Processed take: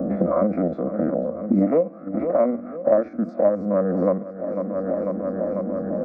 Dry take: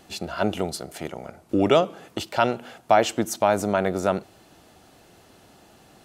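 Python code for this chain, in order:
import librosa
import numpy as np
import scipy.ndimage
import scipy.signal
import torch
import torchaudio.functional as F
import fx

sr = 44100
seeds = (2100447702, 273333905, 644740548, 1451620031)

p1 = fx.spec_steps(x, sr, hold_ms=50)
p2 = fx.env_lowpass(p1, sr, base_hz=550.0, full_db=-20.5)
p3 = scipy.signal.sosfilt(scipy.signal.butter(2, 1000.0, 'lowpass', fs=sr, output='sos'), p2)
p4 = p3 + fx.echo_feedback(p3, sr, ms=496, feedback_pct=58, wet_db=-20, dry=0)
p5 = fx.formant_shift(p4, sr, semitones=-4)
p6 = fx.level_steps(p5, sr, step_db=20)
p7 = p5 + (p6 * 10.0 ** (-2.0 / 20.0))
p8 = fx.highpass(p7, sr, hz=280.0, slope=6)
p9 = fx.fixed_phaser(p8, sr, hz=600.0, stages=8)
p10 = fx.band_squash(p9, sr, depth_pct=100)
y = p10 * 10.0 ** (7.5 / 20.0)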